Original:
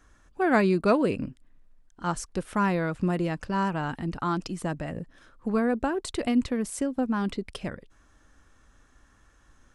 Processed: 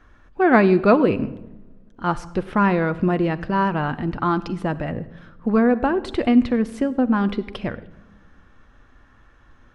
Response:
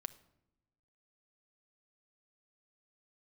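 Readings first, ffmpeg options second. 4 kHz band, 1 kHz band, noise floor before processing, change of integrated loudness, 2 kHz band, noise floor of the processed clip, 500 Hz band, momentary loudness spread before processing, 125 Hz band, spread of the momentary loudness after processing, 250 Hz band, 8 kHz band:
+3.0 dB, +7.0 dB, −61 dBFS, +7.0 dB, +6.5 dB, −53 dBFS, +7.5 dB, 14 LU, +6.0 dB, 14 LU, +7.5 dB, below −10 dB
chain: -filter_complex "[0:a]asplit=2[link_01][link_02];[1:a]atrim=start_sample=2205,asetrate=31752,aresample=44100,lowpass=3700[link_03];[link_02][link_03]afir=irnorm=-1:irlink=0,volume=14.5dB[link_04];[link_01][link_04]amix=inputs=2:normalize=0,volume=-7.5dB"

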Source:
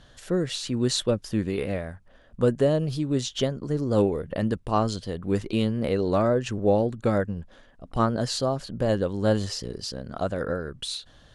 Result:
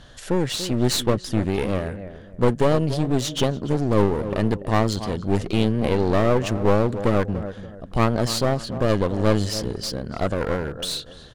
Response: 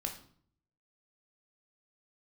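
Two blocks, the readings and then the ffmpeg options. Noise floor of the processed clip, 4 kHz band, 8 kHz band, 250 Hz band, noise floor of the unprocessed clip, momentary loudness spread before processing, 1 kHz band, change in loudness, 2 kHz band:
−43 dBFS, +4.0 dB, +4.0 dB, +3.5 dB, −55 dBFS, 10 LU, +4.5 dB, +3.5 dB, +6.0 dB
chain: -filter_complex "[0:a]acontrast=61,asplit=2[link_01][link_02];[link_02]adelay=288,lowpass=frequency=1400:poles=1,volume=-13dB,asplit=2[link_03][link_04];[link_04]adelay=288,lowpass=frequency=1400:poles=1,volume=0.3,asplit=2[link_05][link_06];[link_06]adelay=288,lowpass=frequency=1400:poles=1,volume=0.3[link_07];[link_01][link_03][link_05][link_07]amix=inputs=4:normalize=0,aeval=exprs='clip(val(0),-1,0.0398)':channel_layout=same"

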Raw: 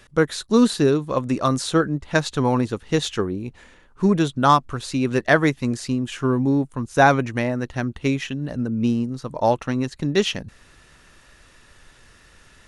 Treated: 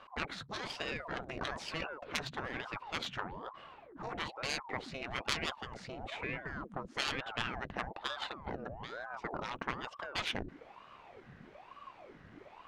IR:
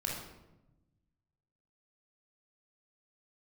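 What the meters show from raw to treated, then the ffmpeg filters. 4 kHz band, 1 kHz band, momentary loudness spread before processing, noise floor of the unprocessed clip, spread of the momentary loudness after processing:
−9.0 dB, −17.5 dB, 9 LU, −53 dBFS, 18 LU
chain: -af "adynamicsmooth=sensitivity=0.5:basefreq=1900,afftfilt=real='re*lt(hypot(re,im),0.141)':imag='im*lt(hypot(re,im),0.141)':win_size=1024:overlap=0.75,aeval=exprs='val(0)*sin(2*PI*640*n/s+640*0.8/1.1*sin(2*PI*1.1*n/s))':channel_layout=same,volume=1dB"

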